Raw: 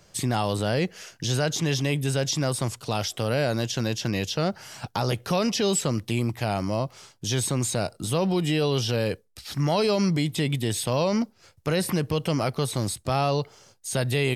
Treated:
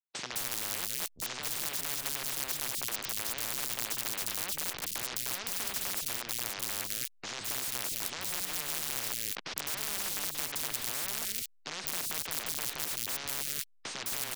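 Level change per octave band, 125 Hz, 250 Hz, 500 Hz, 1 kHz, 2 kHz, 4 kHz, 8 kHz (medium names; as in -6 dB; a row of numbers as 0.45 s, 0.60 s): -26.5 dB, -23.5 dB, -21.5 dB, -12.0 dB, -5.5 dB, -5.0 dB, -1.5 dB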